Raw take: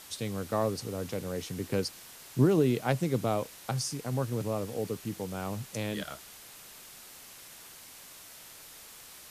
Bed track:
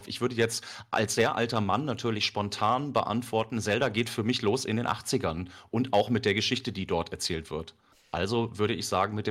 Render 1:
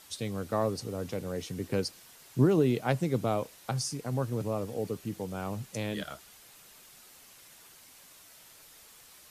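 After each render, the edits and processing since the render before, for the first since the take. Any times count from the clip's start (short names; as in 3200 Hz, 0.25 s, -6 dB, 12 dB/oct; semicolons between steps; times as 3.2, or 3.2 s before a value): denoiser 6 dB, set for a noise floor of -50 dBFS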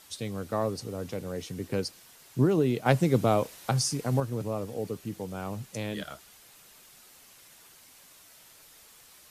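2.86–4.2 gain +5.5 dB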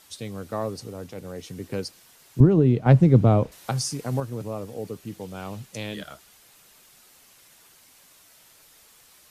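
0.9–1.44 transient shaper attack -7 dB, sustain -3 dB; 2.4–3.52 RIAA curve playback; 5.05–5.96 dynamic EQ 3300 Hz, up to +6 dB, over -55 dBFS, Q 1.1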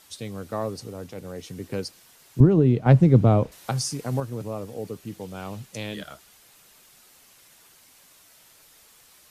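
nothing audible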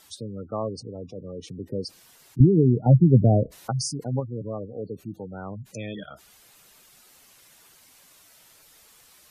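spectral gate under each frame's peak -15 dB strong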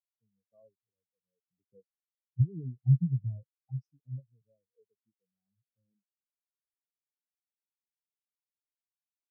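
compressor 6:1, threshold -22 dBFS, peak gain reduction 12 dB; spectral expander 4:1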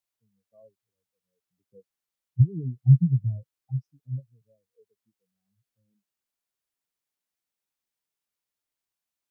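gain +7 dB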